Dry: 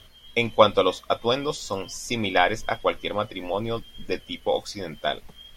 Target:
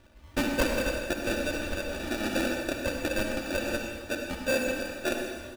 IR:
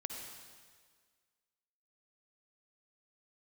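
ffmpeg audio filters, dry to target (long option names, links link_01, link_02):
-filter_complex "[0:a]highpass=frequency=610:poles=1,acrusher=samples=42:mix=1:aa=0.000001,equalizer=frequency=2600:width=0.55:gain=6.5,asettb=1/sr,asplit=3[link_01][link_02][link_03];[link_01]atrim=end=0.624[link_04];[link_02]atrim=start=0.62:end=2.97,asetpts=PTS-STARTPTS,afade=type=in:duration=0.004:curve=qsin,afade=type=out:start_time=2.346:duration=0.004:curve=qsin,acompressor=threshold=-24dB:ratio=6[link_05];[link_03]atrim=start=2.966[link_06];[link_04][link_05]acrossfade=duration=0.004:curve1=hsin:curve2=qsin[link_07];[link_07][link_06]acrossfade=duration=0.004:curve1=qsin:curve2=hsin,aecho=1:1:3.4:0.62,volume=18dB,asoftclip=hard,volume=-18dB[link_08];[1:a]atrim=start_sample=2205[link_09];[link_08][link_09]afir=irnorm=-1:irlink=0"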